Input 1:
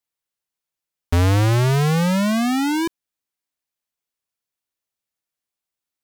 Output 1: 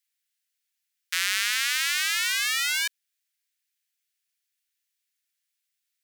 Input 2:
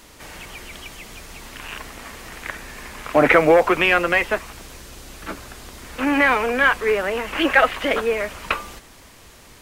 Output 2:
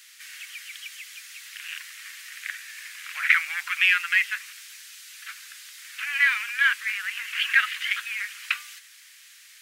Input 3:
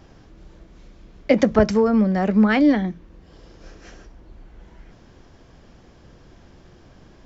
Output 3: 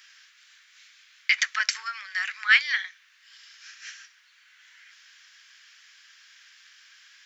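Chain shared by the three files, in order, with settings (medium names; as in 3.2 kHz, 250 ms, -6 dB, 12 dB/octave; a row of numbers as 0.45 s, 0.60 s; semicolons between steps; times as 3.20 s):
steep high-pass 1.6 kHz 36 dB/octave; normalise loudness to -24 LUFS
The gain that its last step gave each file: +6.0 dB, -0.5 dB, +8.5 dB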